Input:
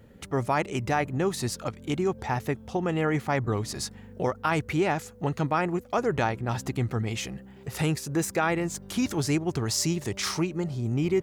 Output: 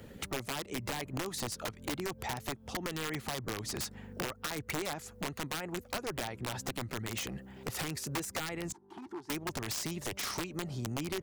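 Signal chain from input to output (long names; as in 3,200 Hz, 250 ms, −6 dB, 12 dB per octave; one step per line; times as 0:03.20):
harmonic and percussive parts rebalanced harmonic −7 dB
downward compressor 6 to 1, threshold −33 dBFS, peak gain reduction 11.5 dB
wrap-around overflow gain 28.5 dB
0:08.72–0:09.30: pair of resonant band-passes 560 Hz, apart 1.3 octaves
multiband upward and downward compressor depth 40%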